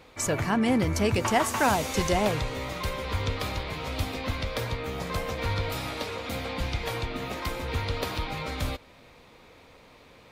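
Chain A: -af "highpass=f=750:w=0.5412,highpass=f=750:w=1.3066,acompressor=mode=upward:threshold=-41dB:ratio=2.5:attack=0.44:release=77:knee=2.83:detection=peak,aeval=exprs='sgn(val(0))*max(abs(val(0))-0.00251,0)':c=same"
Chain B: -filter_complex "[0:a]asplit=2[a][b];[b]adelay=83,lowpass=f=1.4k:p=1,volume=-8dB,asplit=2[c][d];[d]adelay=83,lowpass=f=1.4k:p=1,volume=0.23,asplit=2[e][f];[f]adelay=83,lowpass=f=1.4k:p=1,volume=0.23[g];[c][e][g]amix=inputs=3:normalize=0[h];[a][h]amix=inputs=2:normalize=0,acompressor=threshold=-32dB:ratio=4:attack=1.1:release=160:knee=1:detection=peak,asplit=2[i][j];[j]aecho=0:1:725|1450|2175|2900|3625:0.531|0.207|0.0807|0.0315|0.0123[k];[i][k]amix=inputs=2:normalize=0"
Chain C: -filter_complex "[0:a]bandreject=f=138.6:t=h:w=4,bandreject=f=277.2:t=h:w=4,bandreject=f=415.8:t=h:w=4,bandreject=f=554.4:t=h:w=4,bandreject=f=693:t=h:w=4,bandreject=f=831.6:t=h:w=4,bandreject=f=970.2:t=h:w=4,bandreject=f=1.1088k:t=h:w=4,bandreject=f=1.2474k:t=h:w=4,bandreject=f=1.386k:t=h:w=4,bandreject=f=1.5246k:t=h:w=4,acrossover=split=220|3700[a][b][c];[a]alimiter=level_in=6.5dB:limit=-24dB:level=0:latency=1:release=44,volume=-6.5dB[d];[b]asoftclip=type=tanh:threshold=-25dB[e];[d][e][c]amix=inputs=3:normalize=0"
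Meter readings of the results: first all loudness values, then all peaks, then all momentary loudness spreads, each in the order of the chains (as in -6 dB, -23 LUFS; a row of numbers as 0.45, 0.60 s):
-33.5, -36.0, -31.5 LUFS; -13.0, -21.5, -16.0 dBFS; 10, 8, 6 LU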